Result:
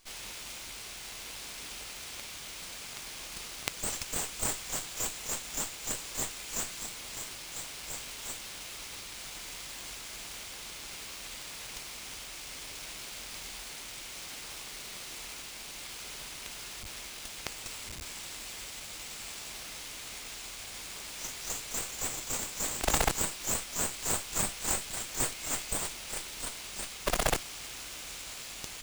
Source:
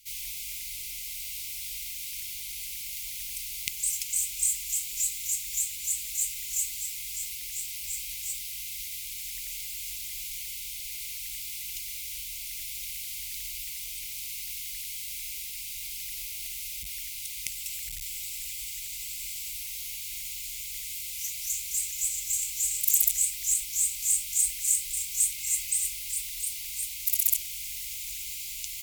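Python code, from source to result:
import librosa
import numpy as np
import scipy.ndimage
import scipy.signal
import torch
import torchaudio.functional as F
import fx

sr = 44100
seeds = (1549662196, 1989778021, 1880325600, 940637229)

y = fx.running_max(x, sr, window=3)
y = y * 10.0 ** (-3.0 / 20.0)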